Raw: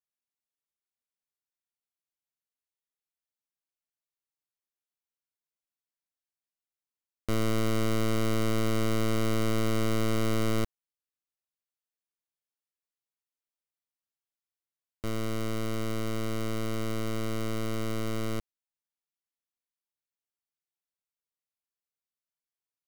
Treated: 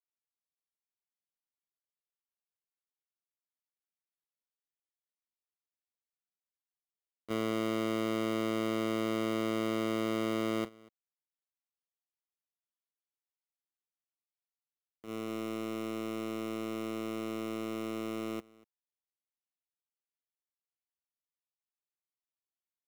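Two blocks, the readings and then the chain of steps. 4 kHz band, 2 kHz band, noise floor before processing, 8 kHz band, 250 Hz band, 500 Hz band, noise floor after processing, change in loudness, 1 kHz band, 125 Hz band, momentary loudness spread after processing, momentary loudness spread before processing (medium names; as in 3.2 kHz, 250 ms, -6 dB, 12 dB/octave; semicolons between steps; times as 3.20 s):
-4.5 dB, -4.0 dB, under -85 dBFS, -9.0 dB, -2.5 dB, -2.5 dB, under -85 dBFS, -3.5 dB, -2.5 dB, -14.0 dB, 6 LU, 6 LU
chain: cabinet simulation 250–3400 Hz, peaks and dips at 570 Hz -3 dB, 1.6 kHz -9 dB, 2.5 kHz -5 dB; in parallel at -5 dB: integer overflow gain 37.5 dB; on the sum: delay 240 ms -13.5 dB; gate -35 dBFS, range -11 dB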